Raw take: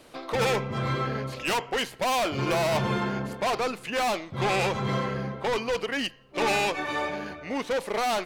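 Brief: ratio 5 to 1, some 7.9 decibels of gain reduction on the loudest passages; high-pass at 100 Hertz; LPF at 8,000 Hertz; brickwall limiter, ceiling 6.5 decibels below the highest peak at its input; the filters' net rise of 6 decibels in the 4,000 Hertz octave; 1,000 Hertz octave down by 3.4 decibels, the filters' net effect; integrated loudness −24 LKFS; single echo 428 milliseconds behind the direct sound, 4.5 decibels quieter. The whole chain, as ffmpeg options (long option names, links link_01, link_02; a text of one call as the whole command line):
ffmpeg -i in.wav -af "highpass=100,lowpass=8000,equalizer=frequency=1000:width_type=o:gain=-5,equalizer=frequency=4000:width_type=o:gain=8.5,acompressor=threshold=-30dB:ratio=5,alimiter=level_in=2dB:limit=-24dB:level=0:latency=1,volume=-2dB,aecho=1:1:428:0.596,volume=9.5dB" out.wav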